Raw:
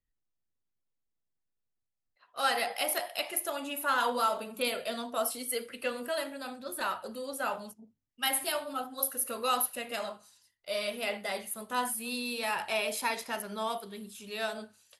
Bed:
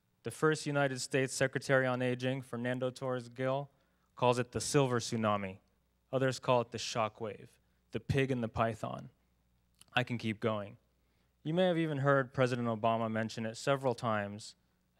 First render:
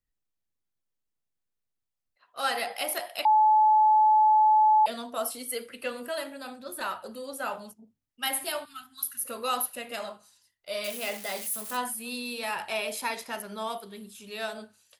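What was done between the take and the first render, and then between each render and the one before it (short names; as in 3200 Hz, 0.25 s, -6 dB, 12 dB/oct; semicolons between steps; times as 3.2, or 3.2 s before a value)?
3.25–4.86 bleep 861 Hz -16.5 dBFS; 8.65–9.25 Chebyshev band-stop 140–1800 Hz; 10.84–11.77 switching spikes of -30.5 dBFS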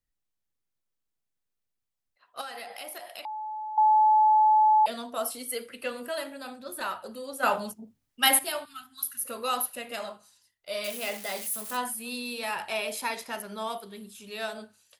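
2.41–3.78 compressor 4:1, threshold -38 dBFS; 7.43–8.39 gain +8.5 dB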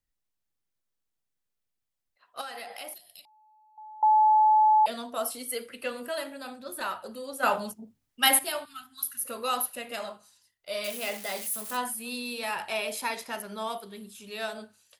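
2.94–4.03 EQ curve 160 Hz 0 dB, 270 Hz -17 dB, 1200 Hz -28 dB, 1700 Hz -24 dB, 4100 Hz -4 dB, 6100 Hz -6 dB, 12000 Hz 0 dB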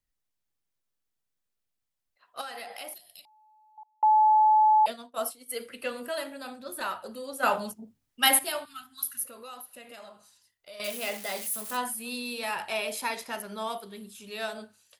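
3.83–5.6 expander -31 dBFS; 9.25–10.8 compressor 2.5:1, threshold -48 dBFS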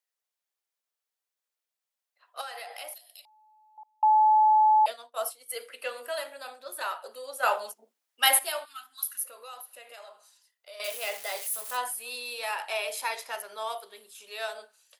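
HPF 470 Hz 24 dB/oct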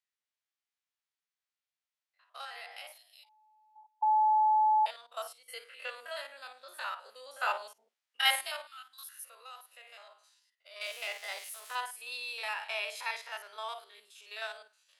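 stepped spectrum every 50 ms; band-pass 2400 Hz, Q 0.64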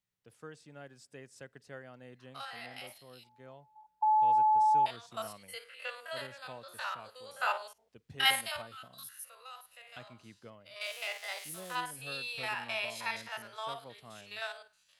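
add bed -18.5 dB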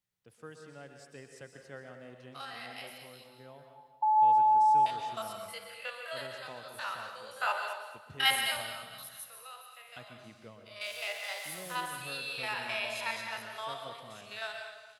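feedback echo 0.226 s, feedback 42%, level -15 dB; plate-style reverb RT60 0.8 s, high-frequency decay 1×, pre-delay 0.11 s, DRR 5 dB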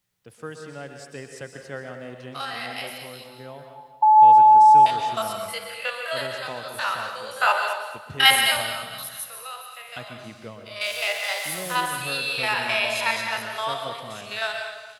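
gain +11.5 dB; limiter -1 dBFS, peak gain reduction 1 dB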